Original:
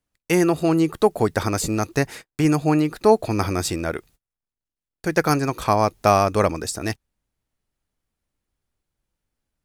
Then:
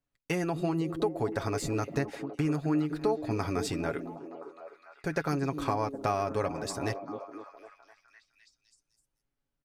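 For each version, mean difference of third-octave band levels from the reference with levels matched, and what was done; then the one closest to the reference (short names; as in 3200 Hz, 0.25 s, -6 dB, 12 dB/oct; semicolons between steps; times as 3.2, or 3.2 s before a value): 4.5 dB: high shelf 6300 Hz -10.5 dB; comb 7.2 ms, depth 54%; compressor 3:1, threshold -22 dBFS, peak gain reduction 11 dB; on a send: delay with a stepping band-pass 0.255 s, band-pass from 240 Hz, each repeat 0.7 oct, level -4.5 dB; on the sum: gain -6 dB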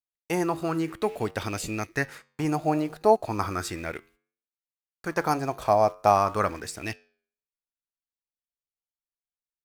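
3.0 dB: gate with hold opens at -49 dBFS; flange 0.62 Hz, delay 8.9 ms, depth 2.2 ms, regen -87%; in parallel at -10.5 dB: requantised 6-bit, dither none; on the sum: LFO bell 0.35 Hz 650–2900 Hz +11 dB; gain -7 dB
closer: second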